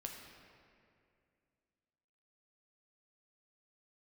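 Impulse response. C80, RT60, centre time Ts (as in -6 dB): 4.5 dB, 2.4 s, 71 ms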